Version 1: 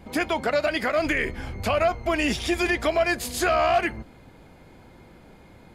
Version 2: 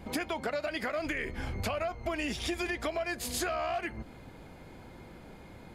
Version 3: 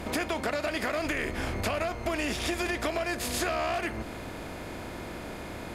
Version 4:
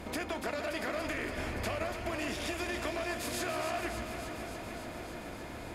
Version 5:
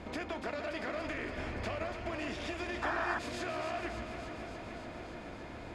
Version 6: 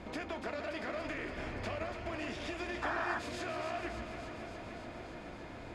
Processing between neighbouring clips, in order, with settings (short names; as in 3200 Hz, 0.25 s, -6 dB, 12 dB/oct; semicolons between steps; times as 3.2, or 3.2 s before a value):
compressor, threshold -31 dBFS, peak gain reduction 13.5 dB
per-bin compression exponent 0.6
echo with dull and thin repeats by turns 0.143 s, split 1800 Hz, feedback 88%, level -7 dB; gain -6.5 dB
painted sound noise, 2.82–3.19, 690–1900 Hz -33 dBFS; air absorption 91 m; gain -2 dB
flange 0.75 Hz, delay 5.3 ms, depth 5.5 ms, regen -74%; gain +3 dB